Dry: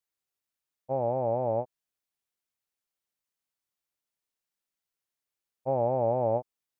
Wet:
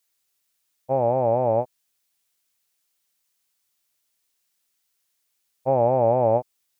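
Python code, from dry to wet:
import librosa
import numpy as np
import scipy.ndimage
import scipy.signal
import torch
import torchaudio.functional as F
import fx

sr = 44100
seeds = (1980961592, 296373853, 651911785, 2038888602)

y = fx.high_shelf(x, sr, hz=2100.0, db=10.0)
y = F.gain(torch.from_numpy(y), 6.5).numpy()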